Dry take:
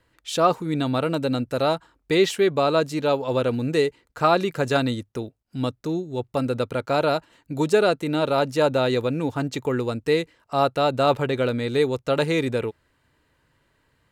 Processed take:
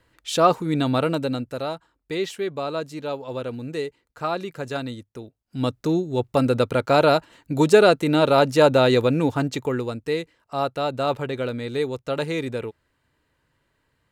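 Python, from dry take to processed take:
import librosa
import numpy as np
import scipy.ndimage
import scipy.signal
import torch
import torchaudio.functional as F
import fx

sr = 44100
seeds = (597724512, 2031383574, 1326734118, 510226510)

y = fx.gain(x, sr, db=fx.line((1.04, 2.0), (1.71, -7.5), (5.22, -7.5), (5.78, 4.5), (9.23, 4.5), (10.05, -4.0)))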